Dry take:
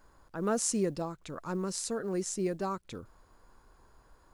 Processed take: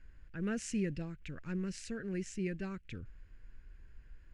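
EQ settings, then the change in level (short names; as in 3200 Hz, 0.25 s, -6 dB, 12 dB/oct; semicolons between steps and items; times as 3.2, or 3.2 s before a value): air absorption 81 m; passive tone stack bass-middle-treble 10-0-1; band shelf 2100 Hz +14.5 dB 1.2 oct; +14.5 dB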